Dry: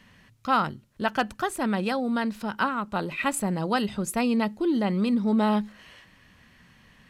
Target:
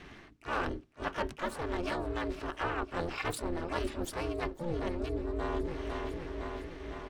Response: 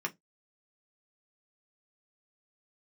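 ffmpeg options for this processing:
-filter_complex "[0:a]adynamicsmooth=sensitivity=6.5:basefreq=5600,asplit=4[s0][s1][s2][s3];[s1]asetrate=22050,aresample=44100,atempo=2,volume=0.708[s4];[s2]asetrate=52444,aresample=44100,atempo=0.840896,volume=0.355[s5];[s3]asetrate=88200,aresample=44100,atempo=0.5,volume=0.282[s6];[s0][s4][s5][s6]amix=inputs=4:normalize=0,aecho=1:1:506|1012|1518|2024|2530:0.133|0.0773|0.0449|0.026|0.0151,areverse,acompressor=threshold=0.0158:ratio=5,areverse,aeval=exprs='val(0)*sin(2*PI*170*n/s)':c=same,asplit=2[s7][s8];[1:a]atrim=start_sample=2205[s9];[s8][s9]afir=irnorm=-1:irlink=0,volume=0.188[s10];[s7][s10]amix=inputs=2:normalize=0,volume=1.78"

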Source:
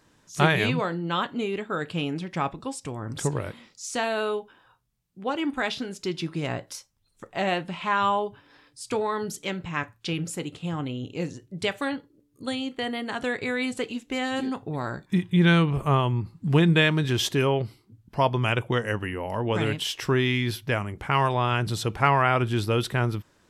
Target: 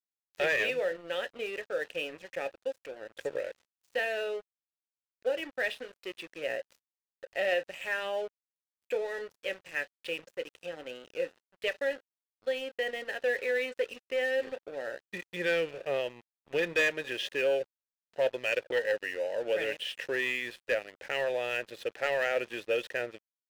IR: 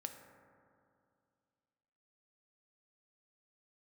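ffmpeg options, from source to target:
-filter_complex "[0:a]asplit=3[s0][s1][s2];[s0]bandpass=f=530:t=q:w=8,volume=1[s3];[s1]bandpass=f=1840:t=q:w=8,volume=0.501[s4];[s2]bandpass=f=2480:t=q:w=8,volume=0.355[s5];[s3][s4][s5]amix=inputs=3:normalize=0,asplit=2[s6][s7];[s7]highpass=f=720:p=1,volume=7.08,asoftclip=type=tanh:threshold=0.141[s8];[s6][s8]amix=inputs=2:normalize=0,lowpass=f=6600:p=1,volume=0.501,aeval=exprs='sgn(val(0))*max(abs(val(0))-0.00501,0)':c=same"

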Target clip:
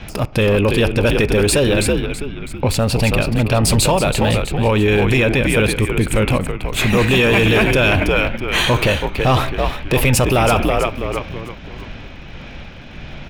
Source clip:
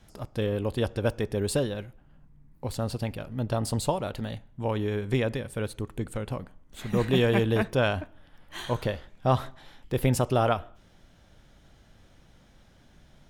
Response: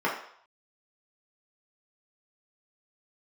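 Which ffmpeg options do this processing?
-filter_complex "[0:a]equalizer=f=2500:t=o:w=0.33:g=12,asplit=2[s0][s1];[s1]acompressor=threshold=0.0141:ratio=12,volume=1.26[s2];[s0][s2]amix=inputs=2:normalize=0,asplit=6[s3][s4][s5][s6][s7][s8];[s4]adelay=327,afreqshift=-77,volume=0.398[s9];[s5]adelay=654,afreqshift=-154,volume=0.164[s10];[s6]adelay=981,afreqshift=-231,volume=0.0668[s11];[s7]adelay=1308,afreqshift=-308,volume=0.0275[s12];[s8]adelay=1635,afreqshift=-385,volume=0.0112[s13];[s3][s9][s10][s11][s12][s13]amix=inputs=6:normalize=0,acrossover=split=5200[s14][s15];[s15]aeval=exprs='val(0)*gte(abs(val(0)),0.00119)':c=same[s16];[s14][s16]amix=inputs=2:normalize=0,tremolo=f=1.6:d=0.3,apsyclip=17.8,volume=0.355"

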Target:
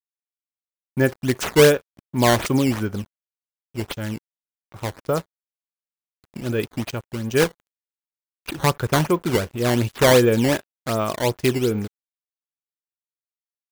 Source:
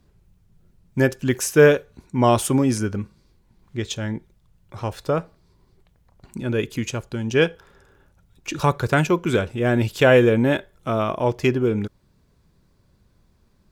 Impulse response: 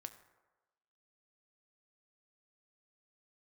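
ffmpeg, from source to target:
-af "acrusher=samples=10:mix=1:aa=0.000001:lfo=1:lforange=16:lforate=2.7,aeval=exprs='sgn(val(0))*max(abs(val(0))-0.00944,0)':c=same"

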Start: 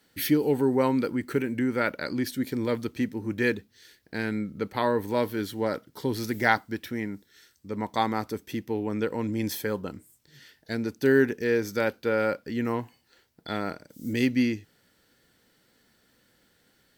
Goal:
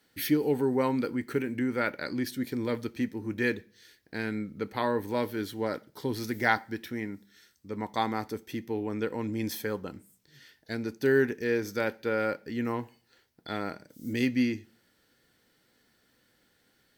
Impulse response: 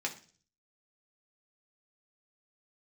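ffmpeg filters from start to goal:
-filter_complex "[0:a]asplit=2[s0][s1];[1:a]atrim=start_sample=2205,asetrate=43218,aresample=44100[s2];[s1][s2]afir=irnorm=-1:irlink=0,volume=0.211[s3];[s0][s3]amix=inputs=2:normalize=0,volume=0.596"

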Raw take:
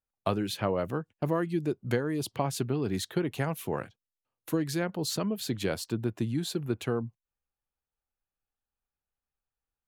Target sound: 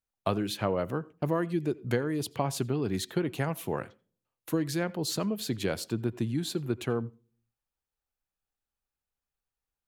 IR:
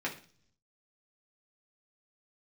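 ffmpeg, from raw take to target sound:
-filter_complex "[0:a]asplit=2[s0][s1];[1:a]atrim=start_sample=2205,asetrate=57330,aresample=44100,adelay=78[s2];[s1][s2]afir=irnorm=-1:irlink=0,volume=0.0631[s3];[s0][s3]amix=inputs=2:normalize=0"

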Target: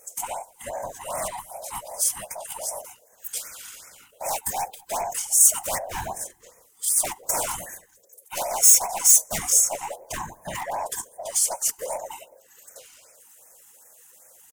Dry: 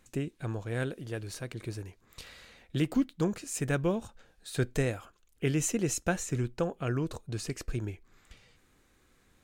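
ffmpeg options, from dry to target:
-filter_complex "[0:a]afftfilt=real='real(if(lt(b,1008),b+24*(1-2*mod(floor(b/24),2)),b),0)':imag='imag(if(lt(b,1008),b+24*(1-2*mod(floor(b/24),2)),b),0)':win_size=2048:overlap=0.75,atempo=0.65,acrossover=split=1100[s0][s1];[s1]acontrast=60[s2];[s0][s2]amix=inputs=2:normalize=0,aeval=exprs='0.1*(abs(mod(val(0)/0.1+3,4)-2)-1)':c=same,bandreject=f=1100:w=14,afftfilt=real='hypot(re,im)*cos(2*PI*random(0))':imag='hypot(re,im)*sin(2*PI*random(1))':win_size=512:overlap=0.75,aeval=exprs='0.112*(cos(1*acos(clip(val(0)/0.112,-1,1)))-cos(1*PI/2))+0.0126*(cos(4*acos(clip(val(0)/0.112,-1,1)))-cos(4*PI/2))+0.0355*(cos(5*acos(clip(val(0)/0.112,-1,1)))-cos(5*PI/2))+0.00316*(cos(6*acos(clip(val(0)/0.112,-1,1)))-cos(6*PI/2))':c=same,aexciter=amount=8.8:drive=2.7:freq=6100,asplit=2[s3][s4];[s4]adelay=194,lowpass=f=820:p=1,volume=0.0708,asplit=2[s5][s6];[s6]adelay=194,lowpass=f=820:p=1,volume=0.3[s7];[s3][s5][s7]amix=inputs=3:normalize=0,afftfilt=real='re*(1-between(b*sr/1024,490*pow(3700/490,0.5+0.5*sin(2*PI*2.6*pts/sr))/1.41,490*pow(3700/490,0.5+0.5*sin(2*PI*2.6*pts/sr))*1.41))':imag='im*(1-between(b*sr/1024,490*pow(3700/490,0.5+0.5*sin(2*PI*2.6*pts/sr))/1.41,490*pow(3700/490,0.5+0.5*sin(2*PI*2.6*pts/sr))*1.41))':win_size=1024:overlap=0.75,volume=0.891"

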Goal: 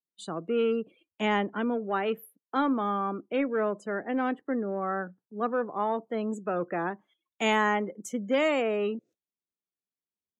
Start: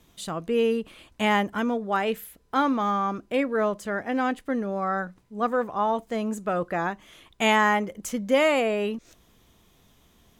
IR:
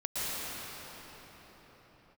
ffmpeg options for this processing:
-filter_complex "[0:a]afftdn=nr=29:nf=-41,agate=range=0.251:threshold=0.002:ratio=16:detection=peak,highpass=f=140:w=0.5412,highpass=f=140:w=1.3066,equalizer=f=370:t=o:w=1:g=6.5,acrossover=split=350|640|5000[s0][s1][s2][s3];[s1]asoftclip=type=tanh:threshold=0.0501[s4];[s0][s4][s2][s3]amix=inputs=4:normalize=0,volume=0.562"

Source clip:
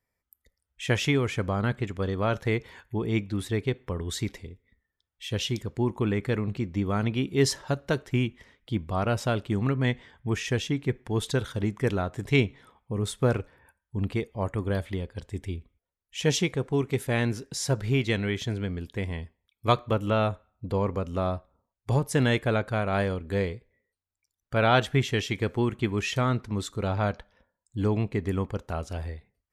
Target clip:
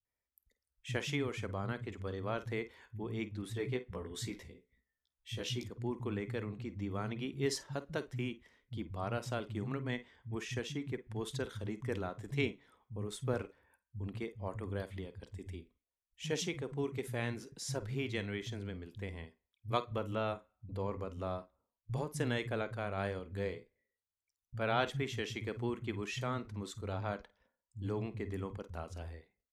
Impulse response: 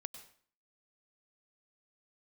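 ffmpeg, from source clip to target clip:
-filter_complex "[0:a]asettb=1/sr,asplit=3[s0][s1][s2];[s0]atrim=end=3.504[s3];[s1]atrim=start=3.5:end=5.63,asetpts=PTS-STARTPTS,afade=t=in:d=0.004:c=qsin,afade=t=out:st=2.126:d=0.004:c=qsin,asplit=2[s4][s5];[s5]adelay=16,volume=0.75[s6];[s4][s6]amix=inputs=2:normalize=0,atrim=end_sample=93933[s7];[s2]atrim=start=5.626[s8];[s3][s7]acrossfade=d=0.004:c1=hsin:c2=qsin[s9];[s9][s8]acrossfade=d=0.004:c1=qsin:c2=hsin,acrossover=split=160[s10][s11];[s11]adelay=50[s12];[s10][s12]amix=inputs=2:normalize=0[s13];[1:a]atrim=start_sample=2205,atrim=end_sample=4410,asetrate=83790,aresample=44100[s14];[s13][s14]afir=irnorm=-1:irlink=0,volume=0.891"

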